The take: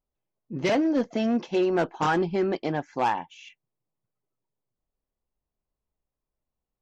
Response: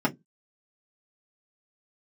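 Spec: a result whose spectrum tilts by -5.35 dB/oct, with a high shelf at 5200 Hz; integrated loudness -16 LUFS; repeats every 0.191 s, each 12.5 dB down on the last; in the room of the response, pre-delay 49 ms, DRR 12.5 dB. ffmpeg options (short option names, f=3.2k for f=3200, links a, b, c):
-filter_complex "[0:a]highshelf=f=5.2k:g=-5.5,aecho=1:1:191|382|573:0.237|0.0569|0.0137,asplit=2[a][b];[1:a]atrim=start_sample=2205,adelay=49[c];[b][c]afir=irnorm=-1:irlink=0,volume=-24.5dB[d];[a][d]amix=inputs=2:normalize=0,volume=9dB"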